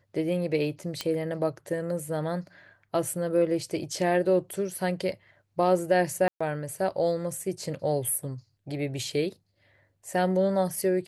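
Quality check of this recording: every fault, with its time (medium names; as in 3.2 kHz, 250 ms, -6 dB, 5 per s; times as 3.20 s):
1.01 s: pop -14 dBFS
6.28–6.41 s: dropout 125 ms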